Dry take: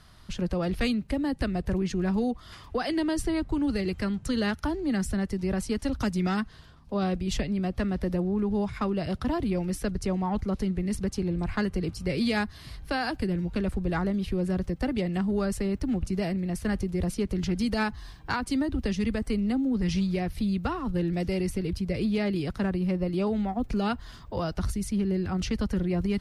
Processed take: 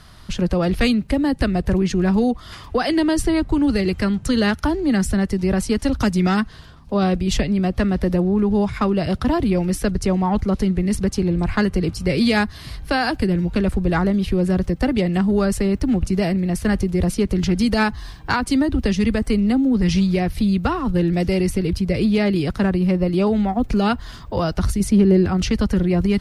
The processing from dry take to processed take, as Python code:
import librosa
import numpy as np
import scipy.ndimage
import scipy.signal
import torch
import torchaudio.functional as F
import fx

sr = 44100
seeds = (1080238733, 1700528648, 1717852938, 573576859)

y = fx.peak_eq(x, sr, hz=420.0, db=6.0, octaves=2.6, at=(24.8, 25.28))
y = F.gain(torch.from_numpy(y), 9.0).numpy()